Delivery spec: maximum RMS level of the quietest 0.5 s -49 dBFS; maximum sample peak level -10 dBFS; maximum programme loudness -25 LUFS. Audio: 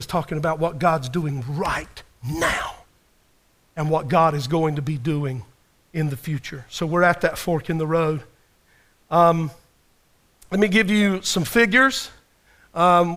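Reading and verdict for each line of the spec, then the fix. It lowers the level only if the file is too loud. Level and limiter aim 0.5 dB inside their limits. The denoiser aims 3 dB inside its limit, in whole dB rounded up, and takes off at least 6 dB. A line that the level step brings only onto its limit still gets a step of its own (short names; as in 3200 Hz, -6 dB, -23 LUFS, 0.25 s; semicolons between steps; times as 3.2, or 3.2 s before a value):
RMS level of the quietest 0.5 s -61 dBFS: OK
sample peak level -4.5 dBFS: fail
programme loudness -21.0 LUFS: fail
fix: gain -4.5 dB; limiter -10.5 dBFS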